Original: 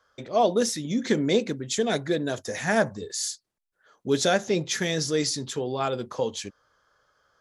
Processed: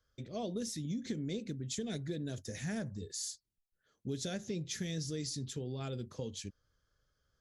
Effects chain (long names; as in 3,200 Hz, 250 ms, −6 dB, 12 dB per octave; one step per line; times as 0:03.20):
guitar amp tone stack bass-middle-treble 10-0-1
downward compressor, threshold −46 dBFS, peak gain reduction 9 dB
level +11.5 dB